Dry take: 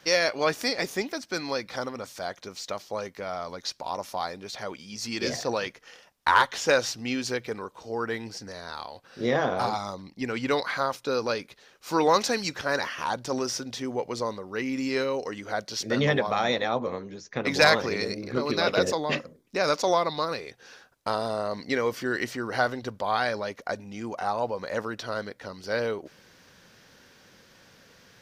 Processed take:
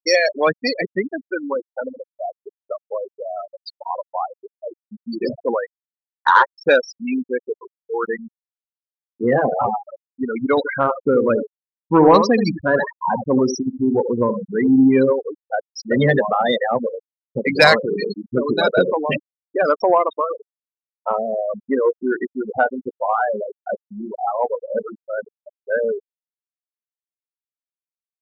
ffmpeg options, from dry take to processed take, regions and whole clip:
ffmpeg -i in.wav -filter_complex "[0:a]asettb=1/sr,asplit=3[link_01][link_02][link_03];[link_01]atrim=end=10.574[link_04];[link_02]atrim=start=10.57:end=15.13,asetpts=PTS-STARTPTS,afade=type=in:duration=0.004:curve=qsin,afade=type=out:start_time=4.556:duration=0.004:curve=qsin,equalizer=frequency=190:width_type=o:width=1.9:gain=7.5,aecho=1:1:76|152|228:0.447|0.112|0.0279,atrim=end_sample=201096[link_05];[link_03]atrim=start=15.126[link_06];[link_04][link_05]acrossfade=duration=0.004:curve1=hsin:curve2=qsin[link_07];[link_07][link_06]acrossfade=duration=0.004:curve1=qsin:curve2=hsin,asettb=1/sr,asplit=3[link_08][link_09][link_10];[link_08]atrim=end=21.594[link_11];[link_09]atrim=start=21.59:end=25.17,asetpts=PTS-STARTPTS,afade=type=in:duration=0.004:curve=qsin,afade=type=out:start_time=3.576:duration=0.004:curve=qsin,lowpass=1500,asplit=2[link_12][link_13];[link_13]adelay=19,volume=-9.5dB[link_14];[link_12][link_14]amix=inputs=2:normalize=0,atrim=end_sample=157878[link_15];[link_10]atrim=start=25.166[link_16];[link_11][link_15]acrossfade=duration=0.004:curve1=hsin:curve2=qsin[link_17];[link_17][link_16]acrossfade=duration=0.004:curve1=qsin:curve2=hsin,afftfilt=real='re*gte(hypot(re,im),0.126)':imag='im*gte(hypot(re,im),0.126)':win_size=1024:overlap=0.75,acontrast=73,volume=2dB" out.wav

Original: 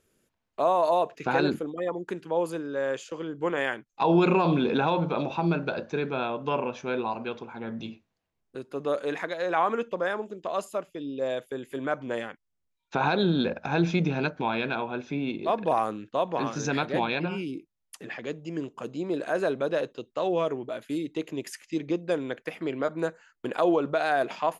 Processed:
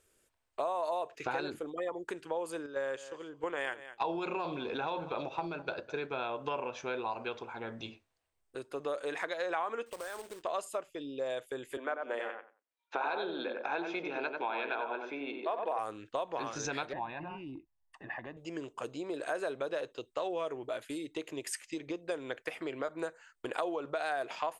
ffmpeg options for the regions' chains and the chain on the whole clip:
ffmpeg -i in.wav -filter_complex "[0:a]asettb=1/sr,asplit=3[link_01][link_02][link_03];[link_01]atrim=end=2.664[link_04];[link_02]atrim=start=2.66:end=6.11,asetpts=PTS-STARTPTS,afade=type=in:duration=0.004:curve=qsin,afade=type=out:start_time=3.446:duration=0.004:curve=qsin,agate=range=-7dB:threshold=-32dB:ratio=16:release=100:detection=peak,aecho=1:1:206:0.112,atrim=end_sample=152145[link_05];[link_03]atrim=start=6.106[link_06];[link_04][link_05]acrossfade=duration=0.004:curve1=hsin:curve2=qsin[link_07];[link_07][link_06]acrossfade=duration=0.004:curve1=qsin:curve2=hsin,asettb=1/sr,asplit=3[link_08][link_09][link_10];[link_08]atrim=end=9.864[link_11];[link_09]atrim=start=9.86:end=10.43,asetpts=PTS-STARTPTS,afade=type=in:duration=0.004:curve=qsin,afade=type=out:start_time=0.566:duration=0.004:curve=qsin,equalizer=frequency=87:width_type=o:width=1.6:gain=-3,acompressor=threshold=-37dB:ratio=5:attack=3.2:release=140:knee=1:detection=peak,acrusher=bits=2:mode=log:mix=0:aa=0.000001[link_12];[link_10]atrim=start=10.426[link_13];[link_11][link_12]acrossfade=duration=0.004:curve1=hsin:curve2=qsin[link_14];[link_14][link_13]acrossfade=duration=0.004:curve1=qsin:curve2=hsin,asettb=1/sr,asplit=3[link_15][link_16][link_17];[link_15]atrim=end=11.774[link_18];[link_16]atrim=start=11.77:end=15.79,asetpts=PTS-STARTPTS,afade=type=in:duration=0.004:curve=qsin,afade=type=out:start_time=4.016:duration=0.004:curve=qsin,highpass=frequency=190:width=0.5412,highpass=frequency=190:width=1.3066,bass=frequency=250:gain=-12,treble=frequency=4000:gain=-13,asplit=2[link_19][link_20];[link_20]adelay=92,lowpass=frequency=1900:poles=1,volume=-5dB,asplit=2[link_21][link_22];[link_22]adelay=92,lowpass=frequency=1900:poles=1,volume=0.22,asplit=2[link_23][link_24];[link_24]adelay=92,lowpass=frequency=1900:poles=1,volume=0.22[link_25];[link_19][link_21][link_23][link_25]amix=inputs=4:normalize=0,atrim=end_sample=177282[link_26];[link_17]atrim=start=15.786[link_27];[link_18][link_26]acrossfade=duration=0.004:curve1=hsin:curve2=qsin[link_28];[link_28][link_27]acrossfade=duration=0.004:curve1=qsin:curve2=hsin,asettb=1/sr,asplit=3[link_29][link_30][link_31];[link_29]atrim=end=16.934[link_32];[link_30]atrim=start=16.93:end=18.37,asetpts=PTS-STARTPTS,afade=type=in:duration=0.004:curve=qsin,afade=type=out:start_time=1.436:duration=0.004:curve=qsin,acompressor=threshold=-32dB:ratio=4:attack=3.2:release=140:knee=1:detection=peak,lowpass=1500,aecho=1:1:1.1:0.75,atrim=end_sample=63504[link_33];[link_31]atrim=start=18.366[link_34];[link_32][link_33]acrossfade=duration=0.004:curve1=hsin:curve2=qsin[link_35];[link_35][link_34]acrossfade=duration=0.004:curve1=qsin:curve2=hsin,equalizer=frequency=8400:width=7.8:gain=12.5,acompressor=threshold=-30dB:ratio=5,equalizer=frequency=190:width=1.2:gain=-14" out.wav

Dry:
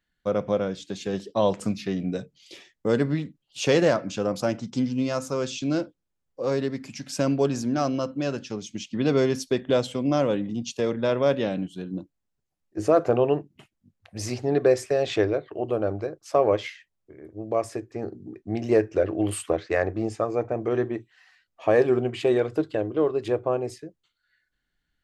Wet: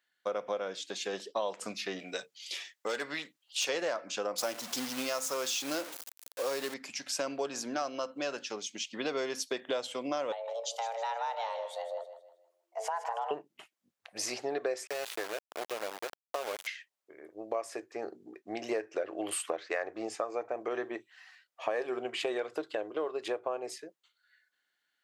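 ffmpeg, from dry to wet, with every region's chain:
ffmpeg -i in.wav -filter_complex "[0:a]asettb=1/sr,asplit=3[link_01][link_02][link_03];[link_01]atrim=end=1.994[link_04];[link_02]atrim=start=1.99:end=3.69,asetpts=PTS-STARTPTS,afade=type=in:duration=0.004:curve=qsin,afade=type=out:start_time=1.696:duration=0.004:curve=qsin,tiltshelf=frequency=820:gain=-6.5,volume=18.5dB,asoftclip=hard,volume=-18.5dB[link_05];[link_03]atrim=start=3.686[link_06];[link_04][link_05]acrossfade=duration=0.004:curve1=hsin:curve2=qsin[link_07];[link_07][link_06]acrossfade=duration=0.004:curve1=qsin:curve2=hsin,asettb=1/sr,asplit=3[link_08][link_09][link_10];[link_08]atrim=end=4.384[link_11];[link_09]atrim=start=4.38:end=6.74,asetpts=PTS-STARTPTS,afade=type=in:duration=0.004:curve=qsin,afade=type=out:start_time=2.356:duration=0.004:curve=qsin,aeval=exprs='val(0)+0.5*0.015*sgn(val(0))':channel_layout=same,highshelf=frequency=5000:gain=8,acrusher=bits=4:mode=log:mix=0:aa=0.000001[link_12];[link_10]atrim=start=6.736[link_13];[link_11][link_12]acrossfade=duration=0.004:curve1=hsin:curve2=qsin[link_14];[link_14][link_13]acrossfade=duration=0.004:curve1=qsin:curve2=hsin,asettb=1/sr,asplit=3[link_15][link_16][link_17];[link_15]atrim=end=10.324[link_18];[link_16]atrim=start=10.32:end=13.31,asetpts=PTS-STARTPTS,afade=type=in:duration=0.004:curve=qsin,afade=type=out:start_time=2.986:duration=0.004:curve=qsin,acompressor=threshold=-34dB:ratio=2.5:attack=3.2:release=140:knee=1:detection=peak,afreqshift=340,aecho=1:1:157|314|471|628:0.266|0.0931|0.0326|0.0114,atrim=end_sample=131859[link_19];[link_17]atrim=start=13.306[link_20];[link_18][link_19]acrossfade=duration=0.004:curve1=hsin:curve2=qsin[link_21];[link_21][link_20]acrossfade=duration=0.004:curve1=qsin:curve2=hsin,asettb=1/sr,asplit=3[link_22][link_23][link_24];[link_22]atrim=end=14.874[link_25];[link_23]atrim=start=14.87:end=16.67,asetpts=PTS-STARTPTS,afade=type=in:duration=0.004:curve=qsin,afade=type=out:start_time=1.796:duration=0.004:curve=qsin,acrossover=split=110|780|1800[link_26][link_27][link_28][link_29];[link_26]acompressor=threshold=-45dB:ratio=3[link_30];[link_27]acompressor=threshold=-33dB:ratio=3[link_31];[link_28]acompressor=threshold=-47dB:ratio=3[link_32];[link_29]acompressor=threshold=-40dB:ratio=3[link_33];[link_30][link_31][link_32][link_33]amix=inputs=4:normalize=0,aeval=exprs='val(0)*gte(abs(val(0)),0.0237)':channel_layout=same[link_34];[link_24]atrim=start=16.666[link_35];[link_25][link_34]acrossfade=duration=0.004:curve1=hsin:curve2=qsin[link_36];[link_36][link_35]acrossfade=duration=0.004:curve1=qsin:curve2=hsin,highpass=610,acompressor=threshold=-33dB:ratio=4,volume=2dB" out.wav

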